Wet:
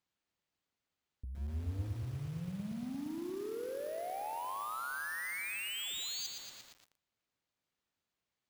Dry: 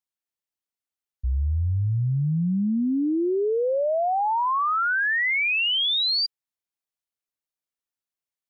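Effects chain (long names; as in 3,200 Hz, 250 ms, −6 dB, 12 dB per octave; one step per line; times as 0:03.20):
bad sample-rate conversion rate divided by 4×, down filtered, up hold
high-pass filter 120 Hz 6 dB per octave
low-shelf EQ 200 Hz +12 dB
0:01.38–0:01.88: noise gate −15 dBFS, range −21 dB
brickwall limiter −29 dBFS, peak gain reduction 15 dB
compressor whose output falls as the input rises −37 dBFS, ratio −0.5
soft clipping −38.5 dBFS, distortion −10 dB
0:05.20–0:05.79: hollow resonant body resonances 220/520/950 Hz, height 15 dB, ringing for 90 ms
feedback echo at a low word length 116 ms, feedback 80%, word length 9 bits, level −5 dB
level +1 dB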